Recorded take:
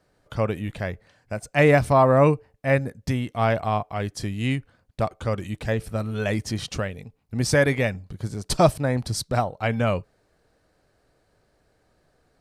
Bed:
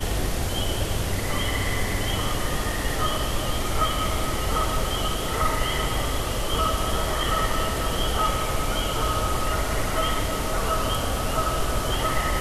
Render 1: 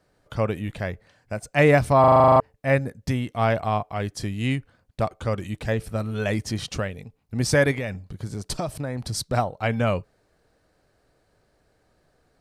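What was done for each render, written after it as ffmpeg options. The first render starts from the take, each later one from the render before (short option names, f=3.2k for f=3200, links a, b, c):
-filter_complex "[0:a]asettb=1/sr,asplit=3[a][b][c];[a]atrim=end=7.714[d];[b]atrim=start=7.71:end=9.15,asetpts=PTS-STARTPTS,afade=t=in:d=0.004:c=qsin,afade=t=out:st=1.436:d=0.004:c=qsin,acompressor=threshold=-24dB:ratio=6:attack=3.2:release=140:knee=1:detection=peak[e];[c]atrim=start=9.146[f];[d][e]acrossfade=d=0.004:c1=hsin:c2=qsin[g];[g][f]acrossfade=d=0.004:c1=qsin:c2=hsin,asplit=11[h][i][j][k][l][m][n][o][p][q][r];[h]atrim=end=2.042[s];[i]atrim=start=1.998:end=2.042[t];[j]atrim=start=1.998:end=2.042[u];[k]atrim=start=1.998:end=2.042[v];[l]atrim=start=1.998:end=2.042[w];[m]atrim=start=1.998:end=2.042[x];[n]atrim=start=1.998:end=2.042[y];[o]atrim=start=1.998:end=2.042[z];[p]atrim=start=1.998:end=2.042[aa];[q]atrim=start=1.998:end=2.042[ab];[r]atrim=start=2.398[ac];[s][t]acrossfade=d=0.004:c1=hsin:c2=hsin[ad];[ad][u]acrossfade=d=0.004:c1=hsin:c2=hsin[ae];[ae][v]acrossfade=d=0.004:c1=hsin:c2=hsin[af];[af][w]acrossfade=d=0.004:c1=hsin:c2=hsin[ag];[ag][x]acrossfade=d=0.004:c1=hsin:c2=hsin[ah];[ah][y]acrossfade=d=0.004:c1=hsin:c2=hsin[ai];[ai][z]acrossfade=d=0.004:c1=hsin:c2=hsin[aj];[aj][aa]acrossfade=d=0.004:c1=hsin:c2=hsin[ak];[ak][ab]acrossfade=d=0.004:c1=hsin:c2=hsin[al];[al][ac]acrossfade=d=0.004:c1=hsin:c2=hsin"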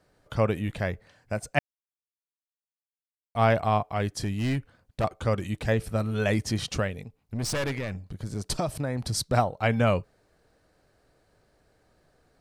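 -filter_complex "[0:a]asettb=1/sr,asplit=3[a][b][c];[a]atrim=end=4.144[d];[b]atrim=start=4.14:end=5.04,asetpts=PTS-STARTPTS,afade=t=in:d=0.004:c=qsin,afade=t=out:st=0.896:d=0.004:c=qsin,asoftclip=type=hard:threshold=-22.5dB[e];[c]atrim=start=5.036[f];[d][e]acrossfade=d=0.004:c1=hsin:c2=qsin[g];[g][f]acrossfade=d=0.004:c1=qsin:c2=hsin,asettb=1/sr,asplit=3[h][i][j];[h]atrim=end=7.034[k];[i]atrim=start=7.03:end=8.36,asetpts=PTS-STARTPTS,afade=t=in:d=0.004:c=qsin,afade=t=out:st=1.326:d=0.004:c=qsin,aeval=exprs='(tanh(20*val(0)+0.4)-tanh(0.4))/20':c=same[l];[j]atrim=start=8.356[m];[k][l]acrossfade=d=0.004:c1=hsin:c2=qsin[n];[n][m]acrossfade=d=0.004:c1=qsin:c2=hsin,asplit=3[o][p][q];[o]atrim=end=1.59,asetpts=PTS-STARTPTS,afade=t=out:st=1.586:d=0.004:c=hsin[r];[p]atrim=start=1.59:end=3.35,asetpts=PTS-STARTPTS,volume=0[s];[q]atrim=start=3.35,asetpts=PTS-STARTPTS,afade=t=in:d=0.004:c=hsin[t];[r][s][t]concat=n=3:v=0:a=1"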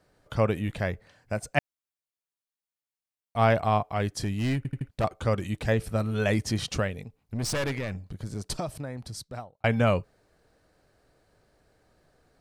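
-filter_complex "[0:a]asplit=6[a][b][c][d][e][f];[a]atrim=end=4.652[g];[b]atrim=start=4.568:end=4.652[h];[c]atrim=start=4.568:end=4.652[i];[d]atrim=start=4.568:end=4.652[j];[e]atrim=start=4.888:end=9.64,asetpts=PTS-STARTPTS,afade=t=out:st=3.162:d=1.59[k];[f]atrim=start=9.64,asetpts=PTS-STARTPTS,afade=t=in:d=0.004:c=hsin[l];[g][h]acrossfade=d=0.004:c1=hsin:c2=hsin[m];[m][i]acrossfade=d=0.004:c1=hsin:c2=hsin[n];[n][j]acrossfade=d=0.004:c1=hsin:c2=hsin[o];[k][l]concat=n=2:v=0:a=1[p];[o][p]acrossfade=d=0.004:c1=hsin:c2=hsin"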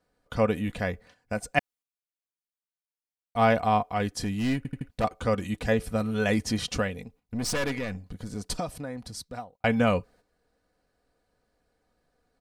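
-af "agate=range=-9dB:threshold=-53dB:ratio=16:detection=peak,aecho=1:1:4.1:0.47"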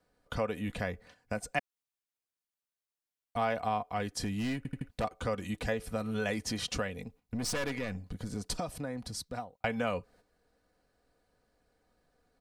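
-filter_complex "[0:a]acrossover=split=350|1400[a][b][c];[a]alimiter=level_in=1.5dB:limit=-24dB:level=0:latency=1:release=256,volume=-1.5dB[d];[d][b][c]amix=inputs=3:normalize=0,acompressor=threshold=-34dB:ratio=2"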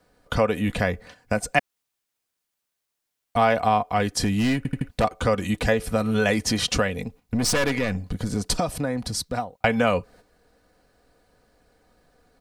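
-af "volume=11.5dB"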